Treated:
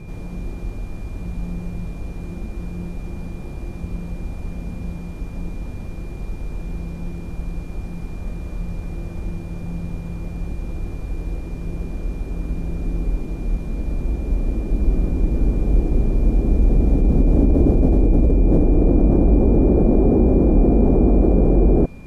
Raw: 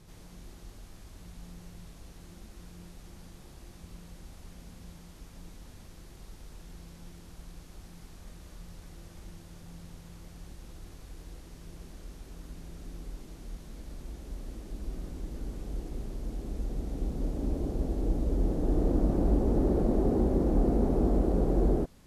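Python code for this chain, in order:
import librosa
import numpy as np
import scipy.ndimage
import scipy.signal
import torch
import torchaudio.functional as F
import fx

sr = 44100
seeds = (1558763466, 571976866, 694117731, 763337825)

p1 = fx.over_compress(x, sr, threshold_db=-31.0, ratio=-0.5)
p2 = x + (p1 * 10.0 ** (2.0 / 20.0))
p3 = p2 + 10.0 ** (-47.0 / 20.0) * np.sin(2.0 * np.pi * 2400.0 * np.arange(len(p2)) / sr)
p4 = fx.tilt_shelf(p3, sr, db=9.0, hz=1300.0)
y = p4 * 10.0 ** (1.0 / 20.0)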